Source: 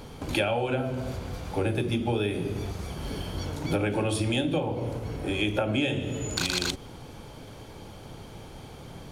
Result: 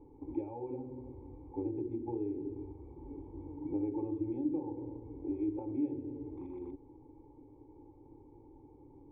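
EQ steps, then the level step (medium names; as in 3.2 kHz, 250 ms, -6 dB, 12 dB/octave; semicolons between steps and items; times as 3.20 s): cascade formant filter u; static phaser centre 1 kHz, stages 8; +1.0 dB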